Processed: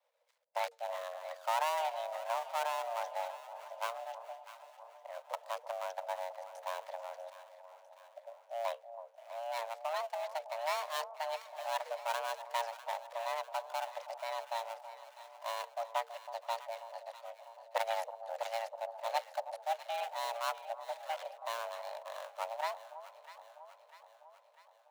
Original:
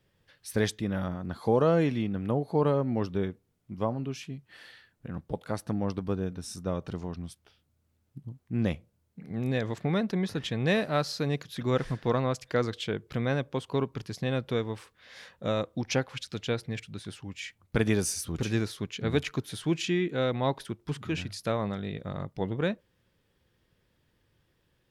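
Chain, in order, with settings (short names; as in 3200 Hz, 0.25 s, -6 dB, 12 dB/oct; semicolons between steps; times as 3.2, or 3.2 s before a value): switching dead time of 0.28 ms; harmonic-percussive split harmonic -5 dB; frequency shift +460 Hz; on a send: echo with dull and thin repeats by turns 0.324 s, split 990 Hz, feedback 75%, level -11 dB; on the sum: gain -6 dB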